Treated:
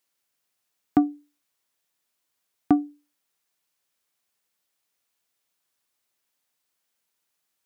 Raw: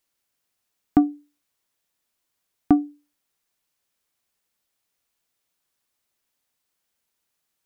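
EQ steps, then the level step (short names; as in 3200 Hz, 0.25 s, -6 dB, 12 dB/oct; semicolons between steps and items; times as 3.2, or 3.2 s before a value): HPF 76 Hz; low shelf 380 Hz -4 dB; 0.0 dB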